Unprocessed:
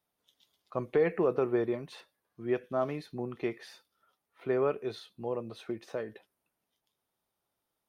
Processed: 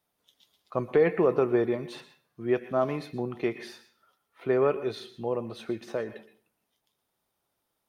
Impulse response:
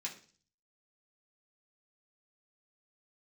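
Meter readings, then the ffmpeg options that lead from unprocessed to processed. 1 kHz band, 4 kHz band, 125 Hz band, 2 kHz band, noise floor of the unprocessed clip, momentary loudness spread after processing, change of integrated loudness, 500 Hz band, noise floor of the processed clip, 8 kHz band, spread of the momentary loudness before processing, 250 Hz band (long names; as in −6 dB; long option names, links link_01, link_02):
+4.5 dB, +4.5 dB, +4.5 dB, +5.0 dB, −85 dBFS, 14 LU, +4.5 dB, +4.5 dB, −80 dBFS, can't be measured, 14 LU, +4.5 dB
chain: -filter_complex "[0:a]asplit=2[link_01][link_02];[1:a]atrim=start_sample=2205,adelay=117[link_03];[link_02][link_03]afir=irnorm=-1:irlink=0,volume=-12.5dB[link_04];[link_01][link_04]amix=inputs=2:normalize=0,volume=4.5dB"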